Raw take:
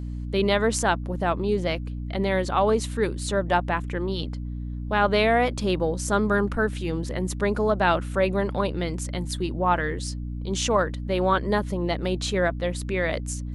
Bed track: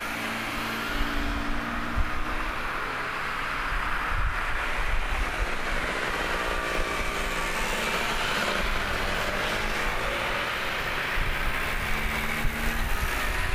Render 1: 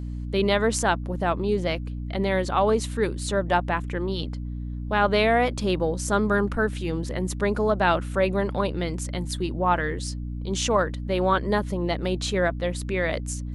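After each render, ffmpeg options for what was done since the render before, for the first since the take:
-af anull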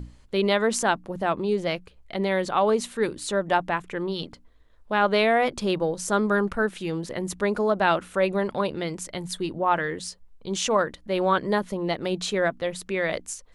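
-af "bandreject=f=60:t=h:w=6,bandreject=f=120:t=h:w=6,bandreject=f=180:t=h:w=6,bandreject=f=240:t=h:w=6,bandreject=f=300:t=h:w=6"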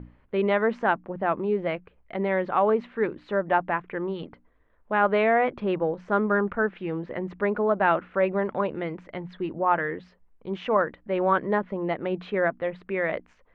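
-af "lowpass=f=2.3k:w=0.5412,lowpass=f=2.3k:w=1.3066,lowshelf=f=96:g=-9.5"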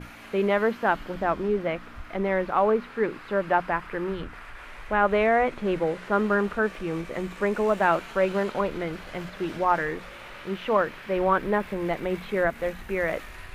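-filter_complex "[1:a]volume=-14.5dB[a];[0:a][a]amix=inputs=2:normalize=0"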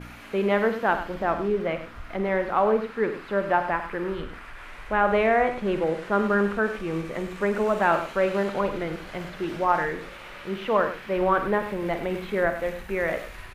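-filter_complex "[0:a]asplit=2[a][b];[b]adelay=50,volume=-11.5dB[c];[a][c]amix=inputs=2:normalize=0,aecho=1:1:99:0.282"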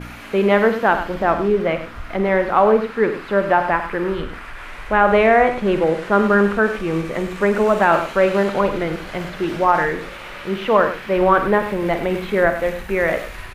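-af "volume=7.5dB,alimiter=limit=-3dB:level=0:latency=1"

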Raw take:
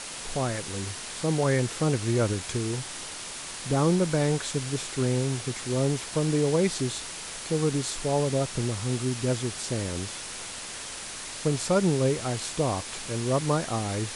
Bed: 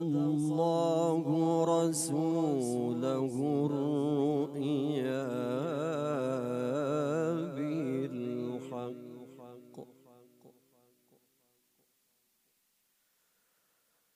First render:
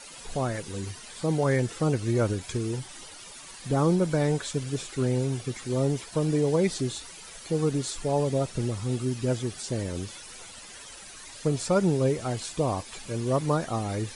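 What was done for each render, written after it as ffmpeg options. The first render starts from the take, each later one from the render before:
-af "afftdn=nr=12:nf=-38"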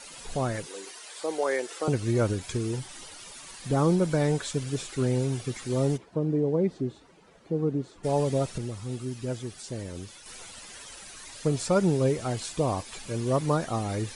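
-filter_complex "[0:a]asettb=1/sr,asplit=3[a][b][c];[a]atrim=end=0.664[d];[b]atrim=start=0.66:end=1.88,asetpts=PTS-STARTPTS,afade=t=in:d=0.004:c=qsin,afade=t=out:st=1.216:d=0.004:c=qsin,highpass=f=370:w=0.5412,highpass=f=370:w=1.3066[e];[c]atrim=start=1.876[f];[d][e]acrossfade=d=0.004:c1=hsin:c2=qsin[g];[g][f]acrossfade=d=0.004:c1=qsin:c2=hsin,asplit=3[h][i][j];[h]afade=t=out:st=5.96:d=0.02[k];[i]bandpass=f=270:t=q:w=0.63,afade=t=in:st=5.96:d=0.02,afade=t=out:st=8.03:d=0.02[l];[j]afade=t=in:st=8.03:d=0.02[m];[k][l][m]amix=inputs=3:normalize=0,asplit=3[n][o][p];[n]atrim=end=8.582[q];[o]atrim=start=8.578:end=10.262,asetpts=PTS-STARTPTS,volume=-5.5dB[r];[p]atrim=start=10.258[s];[q][r]acrossfade=d=0.004:c1=hsin:c2=hsin[t];[t][s]acrossfade=d=0.004:c1=hsin:c2=hsin"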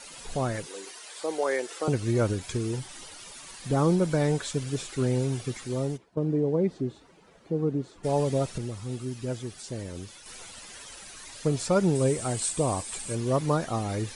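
-filter_complex "[0:a]asettb=1/sr,asplit=3[a][b][c];[a]atrim=end=11.954[d];[b]atrim=start=11.95:end=13.15,asetpts=PTS-STARTPTS,afade=t=in:d=0.004:c=qsin,afade=t=out:st=1.196:d=0.004:c=qsin,equalizer=f=8.4k:t=o:w=0.34:g=15[e];[c]atrim=start=13.146[f];[d][e]acrossfade=d=0.004:c1=hsin:c2=qsin[g];[g][f]acrossfade=d=0.004:c1=qsin:c2=hsin,asplit=2[h][i];[h]atrim=end=6.17,asetpts=PTS-STARTPTS,afade=t=out:st=5.5:d=0.67:silence=0.251189[j];[i]atrim=start=6.17,asetpts=PTS-STARTPTS,afade=t=in:d=0.004:c=hsin:silence=0.251189[k];[j][k]concat=n=2:v=0:a=1"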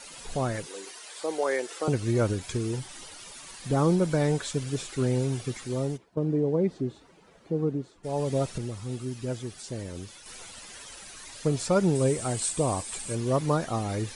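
-filter_complex "[0:a]asplit=2[a][b];[a]atrim=end=8.02,asetpts=PTS-STARTPTS,afade=t=out:st=7.64:d=0.38:silence=0.398107[c];[b]atrim=start=8.02,asetpts=PTS-STARTPTS,afade=t=in:d=0.38:silence=0.398107[d];[c][d]concat=n=2:v=0:a=1"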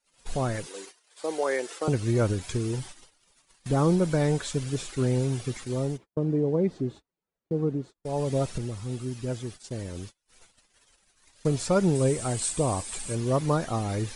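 -af "agate=range=-35dB:threshold=-41dB:ratio=16:detection=peak,lowshelf=f=62:g=7.5"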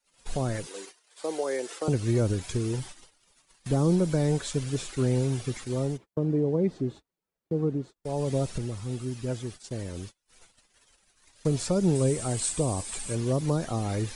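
-filter_complex "[0:a]acrossover=split=730|3300[a][b][c];[b]alimiter=level_in=7.5dB:limit=-24dB:level=0:latency=1:release=124,volume=-7.5dB[d];[a][d][c]amix=inputs=3:normalize=0,acrossover=split=410|3000[e][f][g];[f]acompressor=threshold=-29dB:ratio=6[h];[e][h][g]amix=inputs=3:normalize=0"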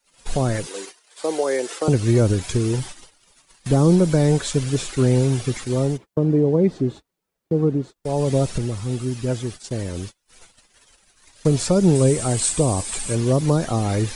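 -af "volume=8dB"

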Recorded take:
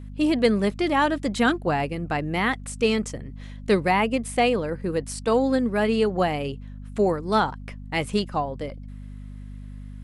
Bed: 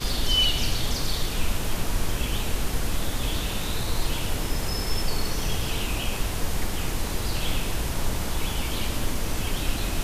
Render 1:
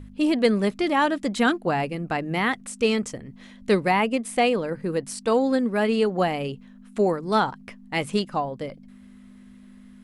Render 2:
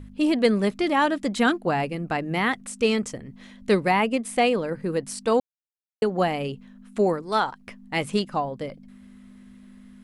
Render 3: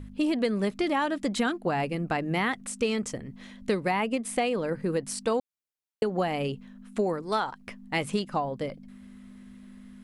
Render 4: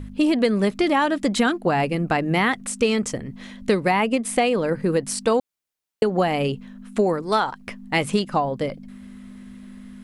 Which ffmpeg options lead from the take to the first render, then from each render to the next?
-af "bandreject=f=50:t=h:w=4,bandreject=f=100:t=h:w=4,bandreject=f=150:t=h:w=4"
-filter_complex "[0:a]asettb=1/sr,asplit=3[a][b][c];[a]atrim=end=7.224[d];[b]atrim=start=7.22:end=7.67,asetpts=PTS-STARTPTS,afade=t=in:d=0.004:c=qsin,afade=t=out:st=0.446:d=0.004:c=qsin,equalizer=f=150:w=0.51:g=-9.5[e];[c]atrim=start=7.666[f];[d][e]acrossfade=d=0.004:c1=hsin:c2=qsin[g];[g][f]acrossfade=d=0.004:c1=qsin:c2=hsin,asplit=3[h][i][j];[h]atrim=end=5.4,asetpts=PTS-STARTPTS,afade=t=out:st=5.396:d=0.004:c=hsin[k];[i]atrim=start=5.4:end=6.02,asetpts=PTS-STARTPTS,volume=0[l];[j]atrim=start=6.02,asetpts=PTS-STARTPTS,afade=t=in:d=0.004:c=hsin[m];[k][l][m]concat=n=3:v=0:a=1"
-af "acompressor=threshold=-23dB:ratio=6"
-af "volume=7dB"

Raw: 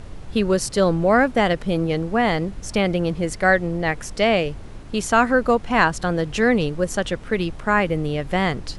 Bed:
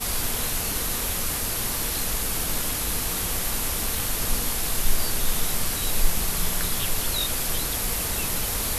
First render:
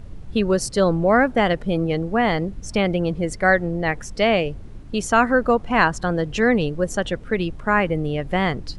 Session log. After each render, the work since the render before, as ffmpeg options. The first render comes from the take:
-af "afftdn=nr=9:nf=-36"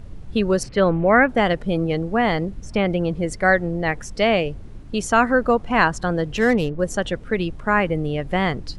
-filter_complex "[0:a]asettb=1/sr,asplit=3[a][b][c];[a]atrim=end=0.634[d];[b]atrim=start=0.63:end=1.29,asetpts=PTS-STARTPTS,afade=t=in:d=0.004:c=qsin,afade=t=out:st=0.656:d=0.004:c=qsin,lowpass=f=2.4k:t=q:w=2.3[e];[c]atrim=start=1.286[f];[d][e]acrossfade=d=0.004:c1=hsin:c2=qsin[g];[g][f]acrossfade=d=0.004:c1=qsin:c2=hsin,asettb=1/sr,asplit=3[h][i][j];[h]atrim=end=2.464[k];[i]atrim=start=2.46:end=3.26,asetpts=PTS-STARTPTS,afade=t=in:d=0.004:c=qsin,afade=t=out:st=0.796:d=0.004:c=qsin,acrossover=split=3200[l][m];[m]acompressor=threshold=-42dB:ratio=4:attack=1:release=60[n];[l][n]amix=inputs=2:normalize=0[o];[j]atrim=start=3.256[p];[k][o]acrossfade=d=0.004:c1=hsin:c2=qsin[q];[q][p]acrossfade=d=0.004:c1=qsin:c2=hsin,asplit=3[r][s][t];[r]afade=t=out:st=6.36:d=0.02[u];[s]adynamicsmooth=sensitivity=3.5:basefreq=2.2k,afade=t=in:st=6.36:d=0.02,afade=t=out:st=6.78:d=0.02[v];[t]afade=t=in:st=6.78:d=0.02[w];[u][v][w]amix=inputs=3:normalize=0"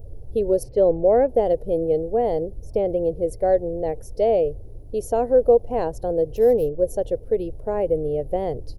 -af "firequalizer=gain_entry='entry(110,0);entry(180,-14);entry(470,6);entry(840,-8);entry(1200,-27);entry(5400,-13);entry(8100,-15);entry(12000,11)':delay=0.05:min_phase=1"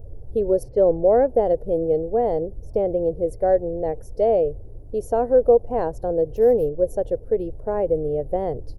-af "highshelf=f=2k:t=q:w=1.5:g=-6,bandreject=f=4k:w=29"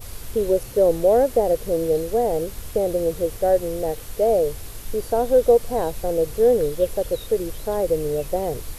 -filter_complex "[1:a]volume=-13.5dB[a];[0:a][a]amix=inputs=2:normalize=0"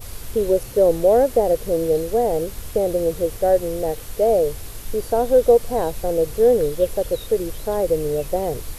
-af "volume=1.5dB"

